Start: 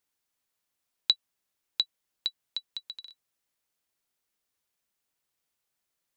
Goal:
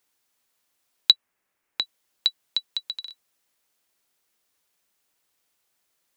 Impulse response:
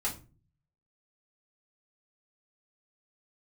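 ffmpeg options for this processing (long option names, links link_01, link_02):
-filter_complex "[0:a]asettb=1/sr,asplit=3[link_01][link_02][link_03];[link_01]atrim=end=1.114[link_04];[link_02]atrim=start=1.11:end=1.82,asetpts=PTS-STARTPTS,afade=type=in:duration=0.004:curve=qsin,afade=type=out:start_time=0.706:duration=0.004:curve=qsin,highshelf=frequency=2800:width_type=q:width=1.5:gain=-7[link_05];[link_03]atrim=start=1.816[link_06];[link_04][link_05]acrossfade=duration=0.004:curve1=hsin:curve2=qsin[link_07];[link_07][link_06]acrossfade=duration=0.004:curve1=qsin:curve2=hsin,acrossover=split=210[link_08][link_09];[link_09]acontrast=31[link_10];[link_08][link_10]amix=inputs=2:normalize=0,volume=3.5dB"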